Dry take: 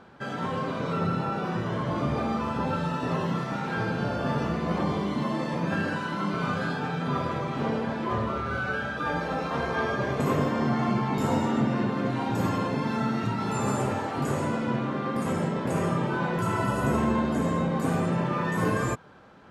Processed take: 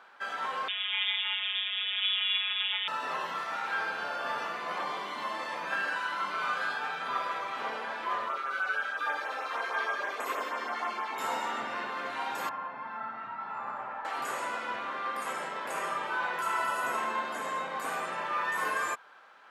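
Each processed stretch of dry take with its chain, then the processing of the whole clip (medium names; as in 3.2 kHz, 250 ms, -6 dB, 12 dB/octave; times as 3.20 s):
0.68–2.88 s: comb filter that takes the minimum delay 8.6 ms + robot voice 195 Hz + frequency inversion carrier 3.6 kHz
8.28–11.19 s: high-pass 240 Hz 24 dB/octave + LFO notch sine 6.3 Hz 690–4800 Hz
12.49–14.05 s: low-pass 1.2 kHz + peaking EQ 410 Hz -11.5 dB 1.1 oct
whole clip: high-pass 1.1 kHz 12 dB/octave; peaking EQ 6.1 kHz -5.5 dB 1.8 oct; trim +3.5 dB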